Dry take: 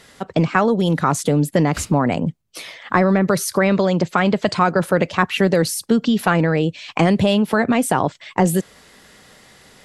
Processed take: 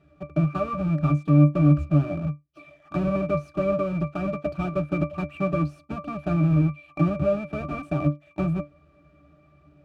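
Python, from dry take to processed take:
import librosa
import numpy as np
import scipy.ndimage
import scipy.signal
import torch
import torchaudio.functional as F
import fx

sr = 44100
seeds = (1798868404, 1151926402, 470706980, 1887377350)

y = fx.halfwave_hold(x, sr)
y = fx.octave_resonator(y, sr, note='D', decay_s=0.18)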